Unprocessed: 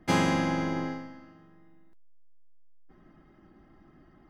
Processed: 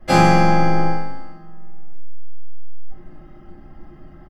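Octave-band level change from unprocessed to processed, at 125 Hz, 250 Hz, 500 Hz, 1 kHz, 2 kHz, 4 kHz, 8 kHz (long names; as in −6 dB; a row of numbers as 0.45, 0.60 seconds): +13.5 dB, +8.5 dB, +12.0 dB, +15.0 dB, +10.0 dB, +8.0 dB, can't be measured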